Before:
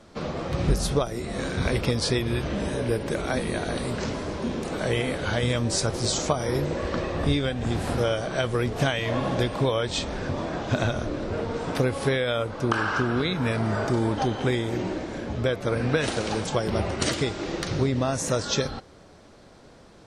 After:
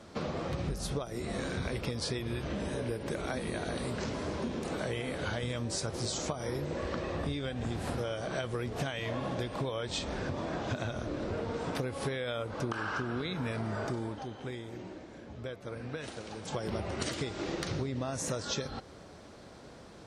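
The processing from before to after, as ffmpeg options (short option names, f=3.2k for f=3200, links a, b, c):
-filter_complex "[0:a]asplit=3[a][b][c];[a]atrim=end=14.22,asetpts=PTS-STARTPTS,afade=t=out:st=13.89:d=0.33:silence=0.16788[d];[b]atrim=start=14.22:end=16.42,asetpts=PTS-STARTPTS,volume=-15.5dB[e];[c]atrim=start=16.42,asetpts=PTS-STARTPTS,afade=t=in:d=0.33:silence=0.16788[f];[d][e][f]concat=n=3:v=0:a=1,highpass=41,acompressor=threshold=-32dB:ratio=6"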